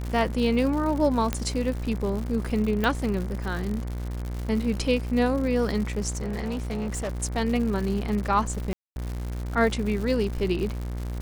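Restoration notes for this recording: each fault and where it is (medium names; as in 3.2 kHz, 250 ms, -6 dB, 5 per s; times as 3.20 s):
buzz 60 Hz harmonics 39 -31 dBFS
crackle 150 per s -31 dBFS
1.33 s: pop -11 dBFS
2.84 s: pop
6.15–7.15 s: clipped -26 dBFS
8.73–8.96 s: dropout 231 ms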